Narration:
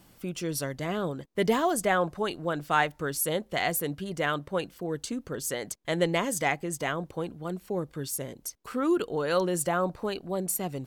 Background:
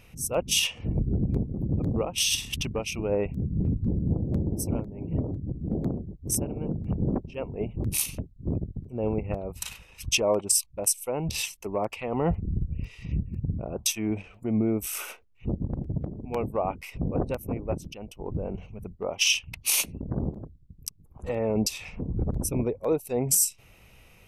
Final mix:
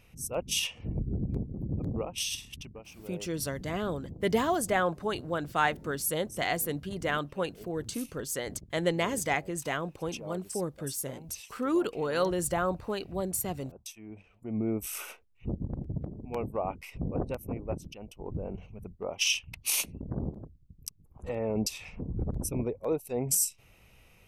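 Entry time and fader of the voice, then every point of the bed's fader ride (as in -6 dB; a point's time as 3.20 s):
2.85 s, -2.0 dB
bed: 2.11 s -6 dB
2.88 s -18 dB
14.07 s -18 dB
14.69 s -4.5 dB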